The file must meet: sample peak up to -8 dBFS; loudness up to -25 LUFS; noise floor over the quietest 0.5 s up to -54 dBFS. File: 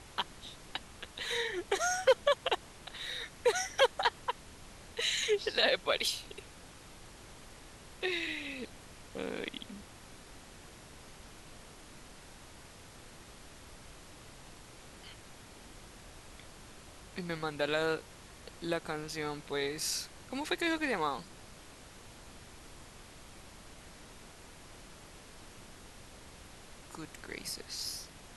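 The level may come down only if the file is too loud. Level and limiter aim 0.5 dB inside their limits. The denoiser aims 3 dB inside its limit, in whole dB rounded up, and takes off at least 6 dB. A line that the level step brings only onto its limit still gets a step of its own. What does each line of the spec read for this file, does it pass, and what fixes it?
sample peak -15.0 dBFS: pass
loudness -34.0 LUFS: pass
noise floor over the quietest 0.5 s -53 dBFS: fail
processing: noise reduction 6 dB, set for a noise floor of -53 dBFS

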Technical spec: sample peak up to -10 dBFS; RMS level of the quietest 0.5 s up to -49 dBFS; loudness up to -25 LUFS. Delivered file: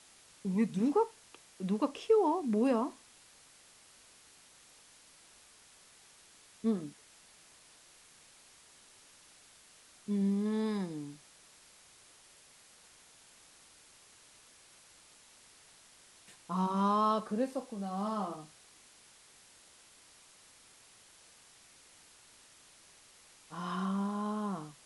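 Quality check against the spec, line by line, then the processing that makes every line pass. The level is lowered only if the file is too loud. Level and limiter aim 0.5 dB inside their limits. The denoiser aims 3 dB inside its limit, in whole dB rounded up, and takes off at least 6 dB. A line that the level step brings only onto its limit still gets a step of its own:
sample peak -17.0 dBFS: pass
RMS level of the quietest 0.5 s -60 dBFS: pass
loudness -33.0 LUFS: pass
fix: none needed

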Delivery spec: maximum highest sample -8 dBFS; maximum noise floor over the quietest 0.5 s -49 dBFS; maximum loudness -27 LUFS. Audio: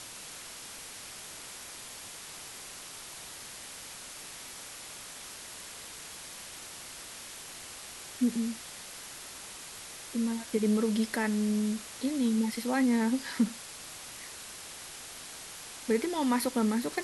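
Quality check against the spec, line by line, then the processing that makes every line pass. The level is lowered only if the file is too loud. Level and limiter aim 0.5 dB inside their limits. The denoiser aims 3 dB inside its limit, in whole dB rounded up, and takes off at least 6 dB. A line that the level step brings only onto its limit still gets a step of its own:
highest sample -16.0 dBFS: pass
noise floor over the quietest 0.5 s -45 dBFS: fail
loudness -34.0 LUFS: pass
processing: noise reduction 7 dB, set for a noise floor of -45 dBFS

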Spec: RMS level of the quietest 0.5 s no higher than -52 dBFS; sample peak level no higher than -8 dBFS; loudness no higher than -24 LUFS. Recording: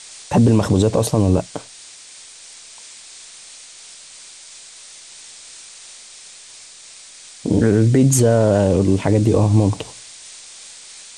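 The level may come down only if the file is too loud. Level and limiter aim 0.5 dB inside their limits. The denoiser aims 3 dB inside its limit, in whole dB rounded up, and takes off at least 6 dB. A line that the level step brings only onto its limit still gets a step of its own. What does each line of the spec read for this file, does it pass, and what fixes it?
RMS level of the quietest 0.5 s -41 dBFS: fail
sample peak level -4.5 dBFS: fail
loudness -16.5 LUFS: fail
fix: noise reduction 6 dB, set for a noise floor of -41 dBFS; trim -8 dB

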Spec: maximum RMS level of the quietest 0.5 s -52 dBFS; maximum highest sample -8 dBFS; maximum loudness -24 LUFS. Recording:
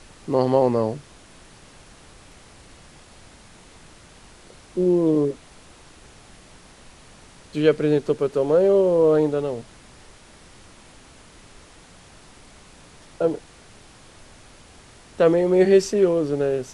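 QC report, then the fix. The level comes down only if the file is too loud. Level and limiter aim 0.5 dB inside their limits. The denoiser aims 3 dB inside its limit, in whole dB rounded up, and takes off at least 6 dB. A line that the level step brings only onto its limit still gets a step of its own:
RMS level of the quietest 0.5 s -48 dBFS: fail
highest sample -5.5 dBFS: fail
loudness -20.5 LUFS: fail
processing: noise reduction 6 dB, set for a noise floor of -48 dBFS; trim -4 dB

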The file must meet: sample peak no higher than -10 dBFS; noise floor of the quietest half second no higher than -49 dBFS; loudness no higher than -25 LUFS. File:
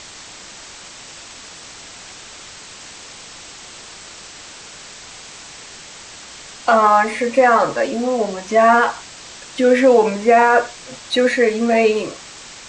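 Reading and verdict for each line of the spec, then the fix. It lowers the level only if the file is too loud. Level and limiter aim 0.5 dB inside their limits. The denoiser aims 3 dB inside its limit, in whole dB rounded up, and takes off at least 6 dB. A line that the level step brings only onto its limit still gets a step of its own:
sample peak -3.0 dBFS: fail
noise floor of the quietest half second -38 dBFS: fail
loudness -15.5 LUFS: fail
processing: noise reduction 6 dB, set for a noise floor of -38 dBFS; trim -10 dB

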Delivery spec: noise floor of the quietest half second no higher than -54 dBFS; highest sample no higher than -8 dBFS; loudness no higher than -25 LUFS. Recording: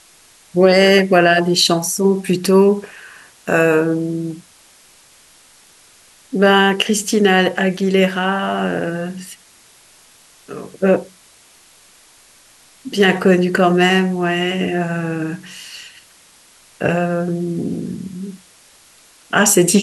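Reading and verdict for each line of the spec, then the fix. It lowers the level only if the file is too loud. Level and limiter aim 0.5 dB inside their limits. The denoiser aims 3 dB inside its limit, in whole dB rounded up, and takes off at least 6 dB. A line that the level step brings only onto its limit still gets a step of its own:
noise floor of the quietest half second -49 dBFS: fail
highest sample -2.0 dBFS: fail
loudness -16.0 LUFS: fail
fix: trim -9.5 dB

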